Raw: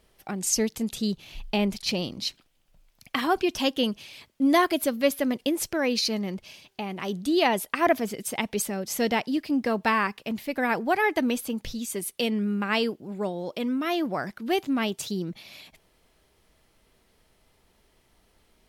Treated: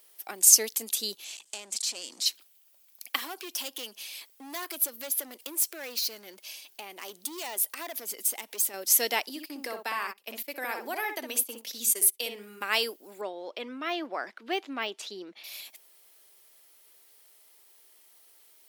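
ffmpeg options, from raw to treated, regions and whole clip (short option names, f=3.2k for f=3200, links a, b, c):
-filter_complex "[0:a]asettb=1/sr,asplit=3[a][b][c];[a]atrim=end=1.244[d];[b]atrim=start=1.24:end=2.26,asetpts=PTS-STARTPTS,afade=t=in:d=0.004:c=qsin,afade=t=out:st=1.016:d=0.004:c=qsin,acompressor=threshold=-32dB:ratio=8:attack=3.2:release=140:knee=1:detection=peak,volume=35dB,asoftclip=hard,volume=-35dB,lowpass=f=7.8k:t=q:w=4.6[e];[c]atrim=start=2.256[f];[d][e]acrossfade=d=0.004:c1=hsin:c2=qsin[g];[g][f]acrossfade=d=0.004:c1=qsin:c2=hsin,asettb=1/sr,asplit=3[h][i][j];[h]atrim=end=3.164[k];[i]atrim=start=3.16:end=8.74,asetpts=PTS-STARTPTS,afade=t=in:d=0.004:c=qsin,afade=t=out:st=5.576:d=0.004:c=qsin,acompressor=threshold=-36dB:ratio=2:attack=3.2:release=140:knee=1:detection=peak,asoftclip=type=hard:threshold=-31.5dB[l];[j]atrim=start=8.736[m];[k][l]acrossfade=d=0.004:c1=hsin:c2=qsin[n];[n][m]acrossfade=d=0.004:c1=qsin:c2=hsin,asettb=1/sr,asplit=3[o][p][q];[o]atrim=end=9.294[r];[p]atrim=start=9.29:end=12.61,asetpts=PTS-STARTPTS,afade=t=in:d=0.004:c=qsin,afade=t=out:st=3.316:d=0.004:c=qsin,acompressor=threshold=-28dB:ratio=3:attack=3.2:release=140:knee=1:detection=peak,asplit=2[s][t];[t]adelay=62,lowpass=f=2.3k:p=1,volume=-5dB,asplit=2[u][v];[v]adelay=62,lowpass=f=2.3k:p=1,volume=0.18,asplit=2[w][x];[x]adelay=62,lowpass=f=2.3k:p=1,volume=0.18[y];[s][u][w][y]amix=inputs=4:normalize=0,atrim=end_sample=146412,agate=range=-19dB:threshold=-35dB:ratio=16:release=100:detection=peak[z];[q]atrim=start=12.606[aa];[r][z]acrossfade=d=0.004:c1=hsin:c2=qsin[ab];[ab][aa]acrossfade=d=0.004:c1=qsin:c2=hsin,asettb=1/sr,asplit=3[ac][ad][ae];[ac]atrim=end=13.214[af];[ad]atrim=start=13.21:end=15.44,asetpts=PTS-STARTPTS,afade=t=in:d=0.004:c=qsin,afade=t=out:st=2.226:d=0.004:c=qsin,highpass=120,lowpass=3k,deesser=0.9[ag];[ae]atrim=start=15.436[ah];[af][ag]acrossfade=d=0.004:c1=hsin:c2=qsin[ai];[ai][ah]acrossfade=d=0.004:c1=qsin:c2=hsin,highpass=f=280:w=0.5412,highpass=f=280:w=1.3066,aemphasis=mode=production:type=riaa,volume=-3dB"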